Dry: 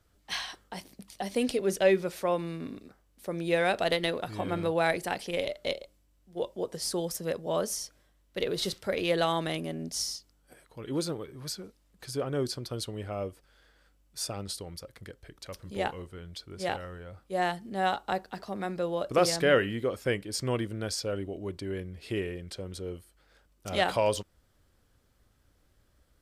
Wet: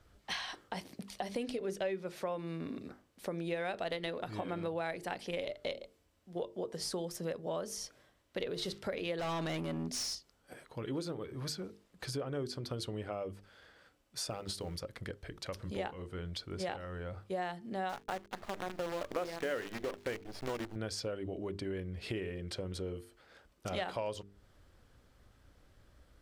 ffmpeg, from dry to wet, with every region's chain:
-filter_complex "[0:a]asettb=1/sr,asplit=3[a][b][c];[a]atrim=end=9.194[d];[b]atrim=start=9.19:end=10.15,asetpts=PTS-STARTPTS,afade=t=in:d=0.004:c=qsin,afade=t=out:st=0.956:d=0.004:c=qsin,bandreject=f=1.3k:w=12,acontrast=50,asoftclip=type=hard:threshold=-27dB[e];[c]atrim=start=10.146[f];[d][e]acrossfade=d=0.004:c1=hsin:c2=qsin[g];[g][f]acrossfade=d=0.004:c1=qsin:c2=hsin,asettb=1/sr,asplit=3[h][i][j];[h]atrim=end=14.304[k];[i]atrim=start=14.3:end=14.76,asetpts=PTS-STARTPTS,afade=t=in:d=0.004:c=qsin,afade=t=out:st=0.456:d=0.004:c=qsin,bandreject=f=50:t=h:w=6,bandreject=f=100:t=h:w=6,bandreject=f=150:t=h:w=6,bandreject=f=200:t=h:w=6,bandreject=f=250:t=h:w=6,bandreject=f=300:t=h:w=6,bandreject=f=350:t=h:w=6,bandreject=f=400:t=h:w=6,acrusher=bits=6:mode=log:mix=0:aa=0.000001[l];[j]atrim=start=14.756[m];[k][l]acrossfade=d=0.004:c1=hsin:c2=qsin[n];[n][m]acrossfade=d=0.004:c1=qsin:c2=hsin,asettb=1/sr,asplit=3[o][p][q];[o]atrim=end=17.894[r];[p]atrim=start=17.89:end=20.76,asetpts=PTS-STARTPTS,afade=t=in:d=0.004:c=qsin,afade=t=out:st=2.866:d=0.004:c=qsin,lowpass=3.1k,equalizer=f=140:w=3.2:g=-15,acrusher=bits=6:dc=4:mix=0:aa=0.000001[s];[q]atrim=start=20.756[t];[r][s]acrossfade=d=0.004:c1=hsin:c2=qsin[u];[u][t]acrossfade=d=0.004:c1=qsin:c2=hsin,highshelf=f=6.8k:g=-10.5,bandreject=f=50:t=h:w=6,bandreject=f=100:t=h:w=6,bandreject=f=150:t=h:w=6,bandreject=f=200:t=h:w=6,bandreject=f=250:t=h:w=6,bandreject=f=300:t=h:w=6,bandreject=f=350:t=h:w=6,bandreject=f=400:t=h:w=6,bandreject=f=450:t=h:w=6,acompressor=threshold=-42dB:ratio=4,volume=5dB"

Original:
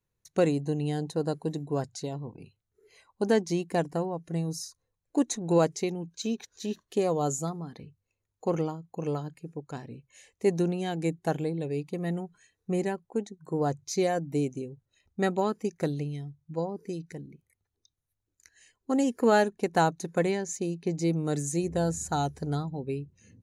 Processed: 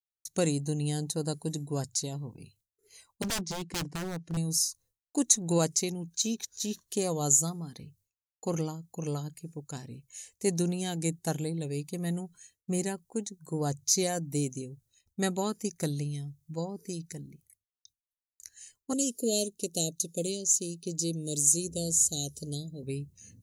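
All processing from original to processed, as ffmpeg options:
-filter_complex "[0:a]asettb=1/sr,asplit=3[a][b][c];[a]atrim=end=3.224[d];[b]atrim=start=3.22:end=4.37,asetpts=PTS-STARTPTS,afade=t=in:d=0.004:c=qsin,afade=t=out:st=1.146:d=0.004:c=qsin,highpass=100,lowpass=3.8k,lowshelf=f=380:g=3.5,aeval=exprs='0.0473*(abs(mod(val(0)/0.0473+3,4)-2)-1)':c=same[e];[c]atrim=start=4.366[f];[d][e]acrossfade=d=0.004:c1=hsin:c2=qsin[g];[g][f]acrossfade=d=0.004:c1=qsin:c2=hsin,asettb=1/sr,asplit=3[h][i][j];[h]atrim=end=18.934[k];[i]atrim=start=18.93:end=22.83,asetpts=PTS-STARTPTS,afade=t=in:d=0.004:c=qsin,afade=t=out:st=3.896:d=0.004:c=qsin,asuperstop=centerf=1300:order=12:qfactor=0.62,lowshelf=f=190:g=-10.5[l];[j]atrim=start=22.826[m];[k][l]acrossfade=d=0.004:c1=hsin:c2=qsin[n];[n][m]acrossfade=d=0.004:c1=qsin:c2=hsin,bass=f=250:g=7,treble=f=4k:g=11,agate=range=-33dB:threshold=-56dB:ratio=3:detection=peak,highshelf=f=3.7k:g=10.5,volume=-6dB"

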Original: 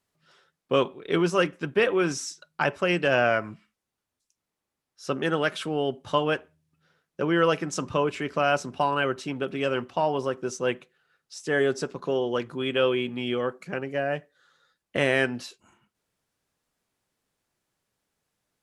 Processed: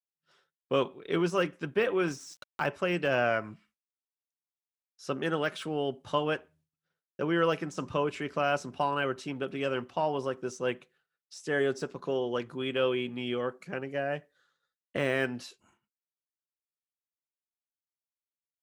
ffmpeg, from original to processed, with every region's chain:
-filter_complex "[0:a]asettb=1/sr,asplit=3[a][b][c];[a]atrim=end=2.084[d];[b]atrim=start=2.08:end=2.68,asetpts=PTS-STARTPTS,afade=t=in:d=0.004:c=qsin,afade=t=out:st=0.596:d=0.004:c=qsin,aeval=exprs='sgn(val(0))*max(abs(val(0))-0.00335,0)':c=same,acompressor=mode=upward:threshold=-28dB:ratio=2.5:attack=3.2:release=140:knee=2.83:detection=peak[e];[c]atrim=start=2.676[f];[d][e]acrossfade=d=0.004:c1=hsin:c2=qsin[g];[g][f]acrossfade=d=0.004:c1=qsin:c2=hsin,agate=range=-33dB:threshold=-56dB:ratio=3:detection=peak,deesser=0.85,volume=-4.5dB"

